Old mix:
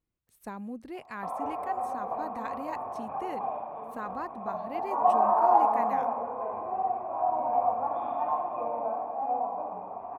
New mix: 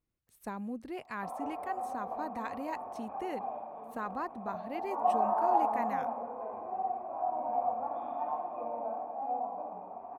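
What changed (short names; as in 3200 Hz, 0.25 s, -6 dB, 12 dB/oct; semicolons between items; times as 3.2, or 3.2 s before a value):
background -8.0 dB; reverb: on, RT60 0.30 s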